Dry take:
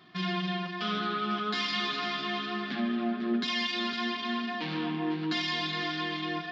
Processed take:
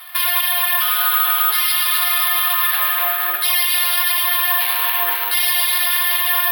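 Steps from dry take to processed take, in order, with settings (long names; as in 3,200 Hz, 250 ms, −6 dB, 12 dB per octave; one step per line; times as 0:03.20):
Bessel high-pass filter 1,100 Hz, order 6
high-frequency loss of the air 58 metres
on a send: echo with a time of its own for lows and highs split 1,500 Hz, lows 441 ms, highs 136 ms, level −7 dB
on the sum: bad sample-rate conversion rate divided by 3×, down none, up zero stuff
boost into a limiter +22.5 dB
level −3 dB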